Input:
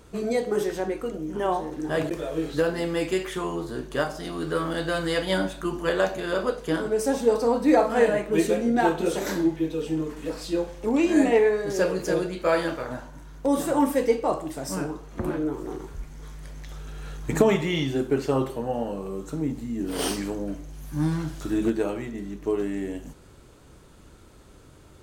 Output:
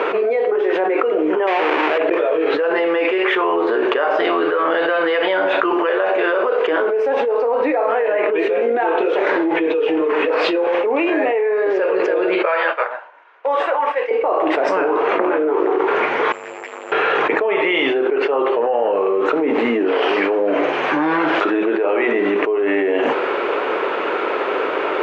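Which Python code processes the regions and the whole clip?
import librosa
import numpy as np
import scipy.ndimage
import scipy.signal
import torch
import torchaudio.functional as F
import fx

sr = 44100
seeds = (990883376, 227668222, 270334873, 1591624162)

y = fx.chain(x, sr, fx.halfwave_hold(),
    fx.highpass(hz=63.0, slope=12),
    fx.high_shelf(hz=5300.0, db=10.5), at=(1.47, 1.98))
y = fx.chain(y, sr, fx.highpass(hz=740.0, slope=12),
    fx.upward_expand(threshold_db=-42.0, expansion=2.5), at=(12.45, 14.11))
y = fx.chain(y, sr, fx.tube_stage(drive_db=52.0, bias=0.6),
    fx.resample_bad(factor=6, down='filtered', up='zero_stuff'),
    fx.ensemble(), at=(16.32, 16.92))
y = scipy.signal.sosfilt(scipy.signal.ellip(3, 1.0, 80, [410.0, 2600.0], 'bandpass', fs=sr, output='sos'), y)
y = fx.env_flatten(y, sr, amount_pct=100)
y = F.gain(torch.from_numpy(y), -2.0).numpy()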